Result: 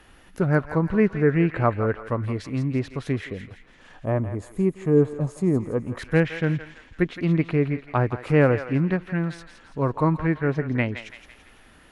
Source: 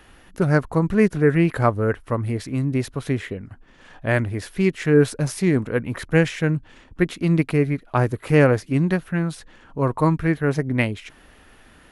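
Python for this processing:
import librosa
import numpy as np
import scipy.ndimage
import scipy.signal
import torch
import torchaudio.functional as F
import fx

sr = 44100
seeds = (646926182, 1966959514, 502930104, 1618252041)

y = fx.env_lowpass_down(x, sr, base_hz=2600.0, full_db=-16.5)
y = fx.echo_thinned(y, sr, ms=167, feedback_pct=51, hz=1100.0, wet_db=-8)
y = fx.spec_box(y, sr, start_s=4.05, length_s=1.92, low_hz=1300.0, high_hz=6300.0, gain_db=-14)
y = F.gain(torch.from_numpy(y), -2.5).numpy()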